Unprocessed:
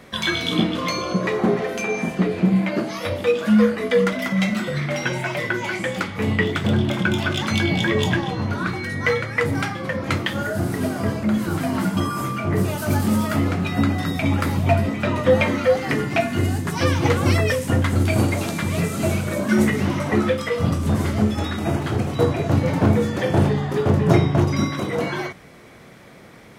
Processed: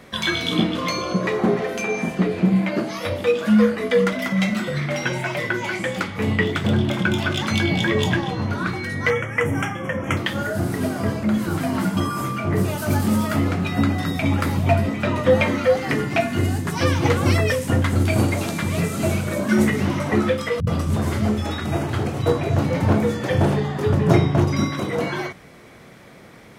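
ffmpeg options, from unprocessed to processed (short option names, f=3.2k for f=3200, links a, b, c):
-filter_complex "[0:a]asettb=1/sr,asplit=3[a][b][c];[a]atrim=end=9.104[d];[b]atrim=start=9.1:end=10.17,asetpts=PTS-STARTPTS,afade=t=in:d=0.004:c=qsin,afade=t=out:st=1.066:d=0.004:c=qsin,asuperstop=centerf=4300:order=12:qfactor=2.1[e];[c]atrim=start=10.166[f];[d][e]acrossfade=d=0.004:c1=hsin:c2=qsin[g];[g][f]acrossfade=d=0.004:c1=qsin:c2=hsin,asettb=1/sr,asplit=3[h][i][j];[h]atrim=end=20.604[k];[i]atrim=start=20.6:end=23.94,asetpts=PTS-STARTPTS,afade=t=in:d=0.004:c=qsin,afade=t=out:st=3.336:d=0.004:c=qsin,acrossover=split=200[l][m];[m]adelay=70[n];[l][n]amix=inputs=2:normalize=0,atrim=end_sample=147294[o];[j]atrim=start=23.936[p];[k][o]acrossfade=d=0.004:c1=hsin:c2=qsin[q];[q][p]acrossfade=d=0.004:c1=qsin:c2=hsin"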